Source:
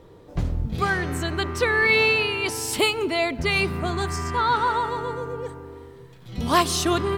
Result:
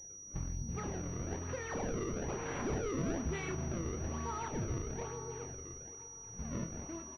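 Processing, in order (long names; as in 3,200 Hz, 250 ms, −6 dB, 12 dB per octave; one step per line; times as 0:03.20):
fade-out on the ending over 0.52 s
source passing by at 0:02.94, 17 m/s, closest 5.1 metres
soft clipping −26 dBFS, distortion −9 dB
downward compressor, threshold −40 dBFS, peak gain reduction 11.5 dB
feedback delay with all-pass diffusion 579 ms, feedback 45%, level −13 dB
sample-and-hold swept by an LFO 31×, swing 160% 1.1 Hz
low-shelf EQ 380 Hz +7 dB
double-tracking delay 30 ms −7.5 dB
switching amplifier with a slow clock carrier 5,800 Hz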